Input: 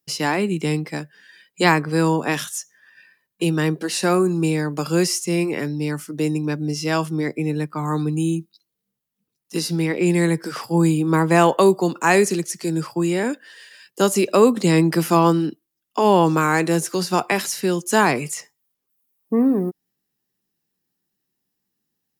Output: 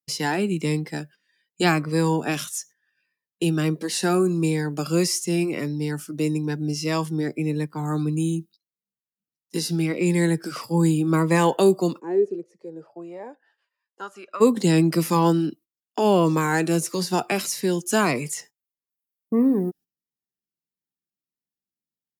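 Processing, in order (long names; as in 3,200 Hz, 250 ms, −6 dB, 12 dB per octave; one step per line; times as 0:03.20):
noise gate −42 dBFS, range −16 dB
0:11.99–0:14.40: resonant band-pass 340 Hz → 1,500 Hz, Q 3.9
phaser whose notches keep moving one way falling 1.6 Hz
level −1.5 dB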